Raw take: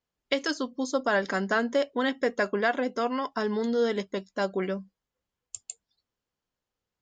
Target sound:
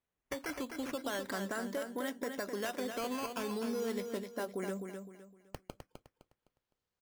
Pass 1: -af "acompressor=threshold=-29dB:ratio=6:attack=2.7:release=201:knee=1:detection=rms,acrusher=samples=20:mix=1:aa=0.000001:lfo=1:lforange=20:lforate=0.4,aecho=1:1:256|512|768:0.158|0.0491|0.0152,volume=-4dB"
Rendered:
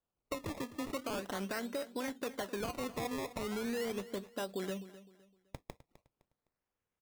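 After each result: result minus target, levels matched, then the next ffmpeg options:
echo-to-direct -9.5 dB; decimation with a swept rate: distortion +7 dB
-af "acompressor=threshold=-29dB:ratio=6:attack=2.7:release=201:knee=1:detection=rms,acrusher=samples=20:mix=1:aa=0.000001:lfo=1:lforange=20:lforate=0.4,aecho=1:1:256|512|768|1024:0.473|0.147|0.0455|0.0141,volume=-4dB"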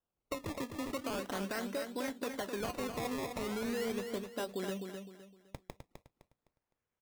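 decimation with a swept rate: distortion +7 dB
-af "acompressor=threshold=-29dB:ratio=6:attack=2.7:release=201:knee=1:detection=rms,acrusher=samples=8:mix=1:aa=0.000001:lfo=1:lforange=8:lforate=0.4,aecho=1:1:256|512|768|1024:0.473|0.147|0.0455|0.0141,volume=-4dB"

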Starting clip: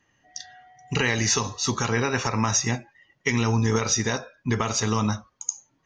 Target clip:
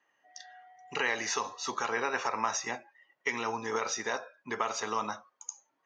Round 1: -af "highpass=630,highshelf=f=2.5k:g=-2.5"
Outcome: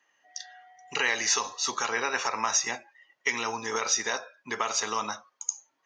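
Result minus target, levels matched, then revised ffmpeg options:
4000 Hz band +3.5 dB
-af "highpass=630,highshelf=f=2.5k:g=-14"

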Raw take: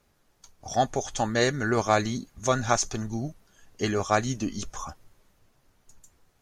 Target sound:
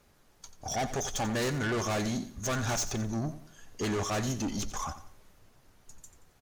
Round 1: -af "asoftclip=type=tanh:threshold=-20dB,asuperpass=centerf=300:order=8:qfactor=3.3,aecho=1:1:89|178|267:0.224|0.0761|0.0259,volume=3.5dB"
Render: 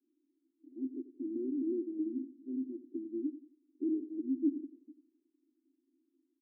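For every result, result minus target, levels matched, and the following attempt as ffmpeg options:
250 Hz band +5.0 dB; soft clip: distortion -7 dB
-af "asoftclip=type=tanh:threshold=-20dB,aecho=1:1:89|178|267:0.224|0.0761|0.0259,volume=3.5dB"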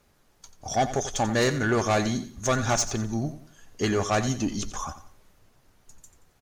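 soft clip: distortion -7 dB
-af "asoftclip=type=tanh:threshold=-31.5dB,aecho=1:1:89|178|267:0.224|0.0761|0.0259,volume=3.5dB"

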